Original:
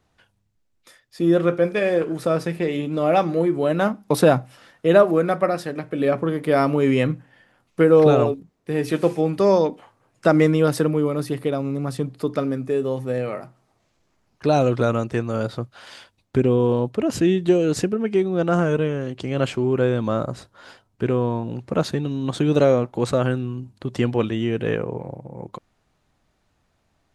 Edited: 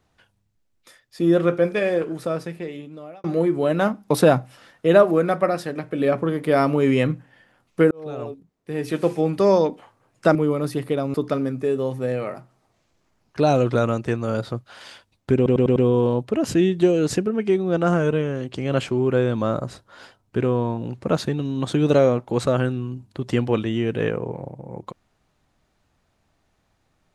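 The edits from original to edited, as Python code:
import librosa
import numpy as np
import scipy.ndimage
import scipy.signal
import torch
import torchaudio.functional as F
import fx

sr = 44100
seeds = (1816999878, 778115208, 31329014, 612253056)

y = fx.edit(x, sr, fx.fade_out_span(start_s=1.69, length_s=1.55),
    fx.fade_in_span(start_s=7.91, length_s=1.36),
    fx.cut(start_s=10.35, length_s=0.55),
    fx.cut(start_s=11.69, length_s=0.51),
    fx.stutter(start_s=16.42, slice_s=0.1, count=5), tone=tone)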